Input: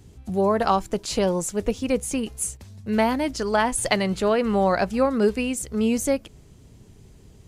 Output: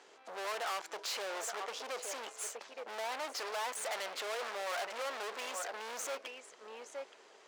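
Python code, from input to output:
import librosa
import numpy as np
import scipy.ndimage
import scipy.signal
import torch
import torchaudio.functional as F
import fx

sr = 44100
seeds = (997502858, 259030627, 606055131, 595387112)

y = scipy.signal.sosfilt(scipy.signal.cheby1(2, 1.0, 5800.0, 'lowpass', fs=sr, output='sos'), x)
y = fx.peak_eq(y, sr, hz=1400.0, db=6.5, octaves=1.3)
y = y + 10.0 ** (-19.0 / 20.0) * np.pad(y, (int(871 * sr / 1000.0), 0))[:len(y)]
y = fx.tube_stage(y, sr, drive_db=33.0, bias=0.4)
y = fx.high_shelf(y, sr, hz=3900.0, db=-7.0)
y = np.clip(y, -10.0 ** (-40.0 / 20.0), 10.0 ** (-40.0 / 20.0))
y = scipy.signal.sosfilt(scipy.signal.butter(4, 500.0, 'highpass', fs=sr, output='sos'), y)
y = F.gain(torch.from_numpy(y), 5.0).numpy()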